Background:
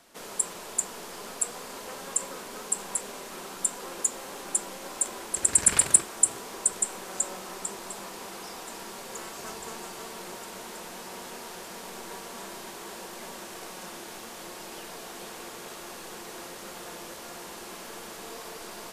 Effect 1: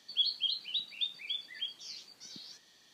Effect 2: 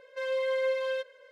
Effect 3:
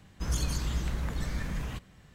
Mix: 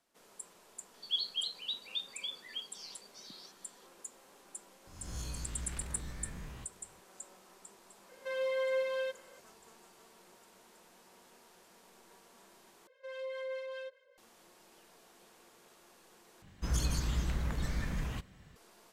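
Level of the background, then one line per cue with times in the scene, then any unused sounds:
background -20 dB
0.94 add 1 -3.5 dB + HPF 110 Hz 24 dB/oct
4.87 add 3 -13.5 dB + spectral swells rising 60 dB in 0.83 s
8.09 add 2 -4 dB
12.87 replace with 2 -9 dB + harmonic tremolo 4.9 Hz, depth 50%, crossover 880 Hz
16.42 replace with 3 -2 dB

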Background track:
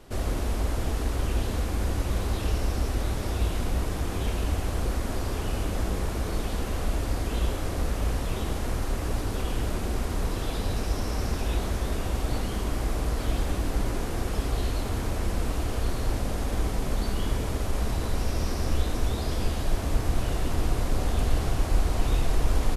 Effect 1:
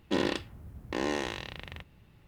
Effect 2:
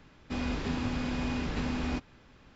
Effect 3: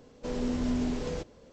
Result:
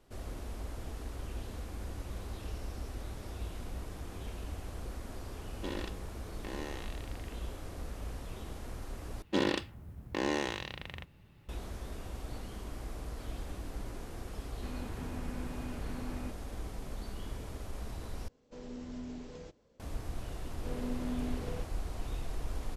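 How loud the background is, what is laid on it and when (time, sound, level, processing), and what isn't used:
background track -14 dB
5.52 add 1 -11 dB
9.22 replace with 1 -1 dB
14.32 add 2 -10 dB + Gaussian blur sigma 3.1 samples
18.28 replace with 3 -13.5 dB
20.41 add 3 -7 dB + Chebyshev band-pass 100–2900 Hz

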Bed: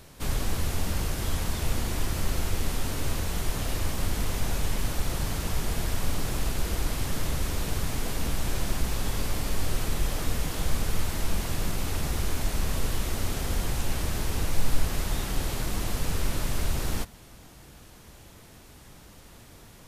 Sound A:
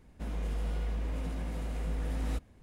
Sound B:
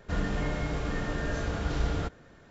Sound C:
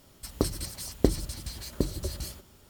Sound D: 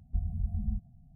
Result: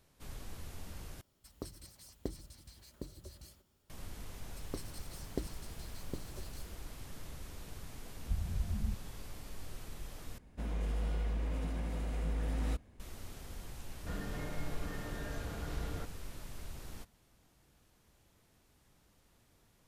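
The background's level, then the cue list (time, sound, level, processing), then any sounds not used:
bed -18.5 dB
1.21 replace with C -17.5 dB
4.33 add C -15.5 dB
8.16 add D -3.5 dB
10.38 replace with A -1.5 dB
13.97 add B -11 dB

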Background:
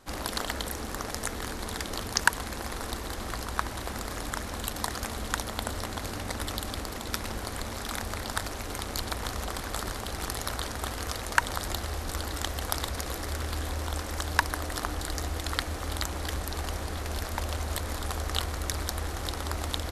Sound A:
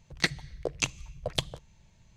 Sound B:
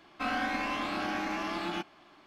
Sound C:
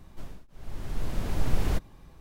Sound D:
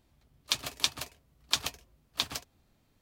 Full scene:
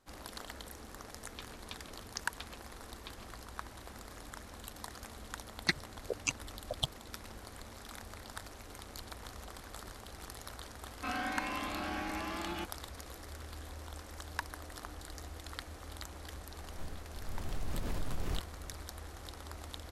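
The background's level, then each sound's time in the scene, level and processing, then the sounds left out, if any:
background -14 dB
0.87 add D -14.5 dB + LPF 2800 Hz
5.45 add A -1.5 dB + per-bin expansion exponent 3
10.83 add B -5.5 dB
16.61 add C -4.5 dB + compressor, threshold -25 dBFS

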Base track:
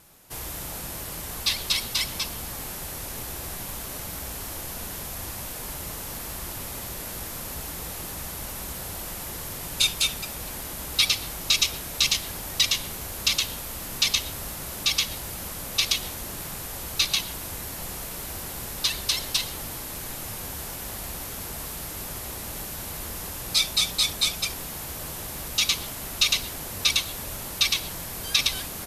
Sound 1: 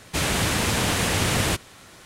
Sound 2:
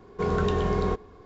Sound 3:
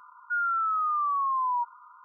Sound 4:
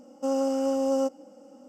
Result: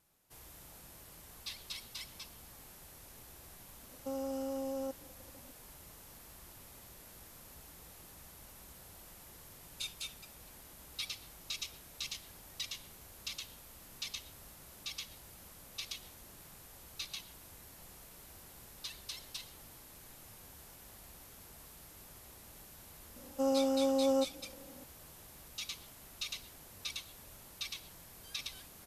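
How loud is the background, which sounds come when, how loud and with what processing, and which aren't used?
base track -19.5 dB
3.83 add 4 -8 dB + level quantiser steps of 10 dB
23.16 add 4 -4.5 dB
not used: 1, 2, 3

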